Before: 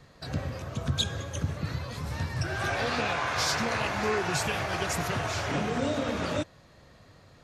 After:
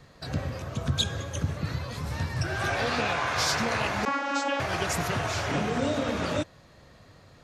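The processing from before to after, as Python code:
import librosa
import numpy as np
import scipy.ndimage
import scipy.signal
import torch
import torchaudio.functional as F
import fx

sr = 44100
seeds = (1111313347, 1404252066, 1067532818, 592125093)

y = fx.vocoder(x, sr, bands=32, carrier='saw', carrier_hz=279.0, at=(4.05, 4.6))
y = y * 10.0 ** (1.5 / 20.0)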